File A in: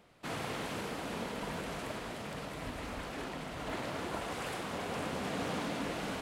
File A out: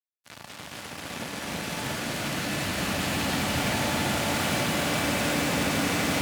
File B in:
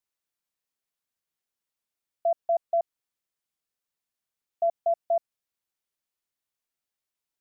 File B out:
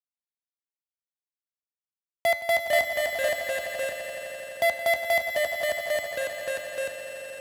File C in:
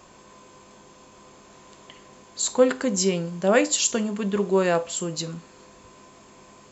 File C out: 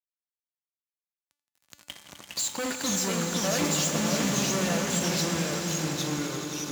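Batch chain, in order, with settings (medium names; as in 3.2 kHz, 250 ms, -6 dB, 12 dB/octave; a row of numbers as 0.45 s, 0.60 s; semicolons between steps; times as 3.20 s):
recorder AGC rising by 5.5 dB/s; peaking EQ 1.1 kHz -7.5 dB 0.78 oct; fuzz box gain 33 dB, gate -33 dBFS; ever faster or slower copies 176 ms, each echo -2 st, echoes 2; high-pass 67 Hz 24 dB/octave; peaking EQ 420 Hz -7 dB 0.73 oct; feedback comb 290 Hz, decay 0.61 s, mix 70%; echo with a slow build-up 85 ms, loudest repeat 5, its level -11.5 dB; normalise loudness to -27 LUFS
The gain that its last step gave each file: -3.5 dB, +4.0 dB, -3.0 dB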